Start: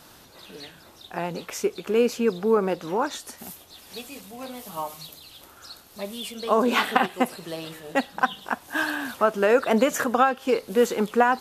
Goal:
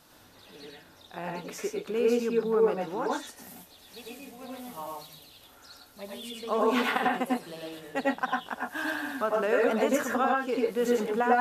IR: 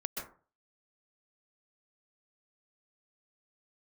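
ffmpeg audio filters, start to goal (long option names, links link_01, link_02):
-filter_complex "[1:a]atrim=start_sample=2205,afade=type=out:start_time=0.24:duration=0.01,atrim=end_sample=11025,asetrate=57330,aresample=44100[link_01];[0:a][link_01]afir=irnorm=-1:irlink=0,volume=-4.5dB"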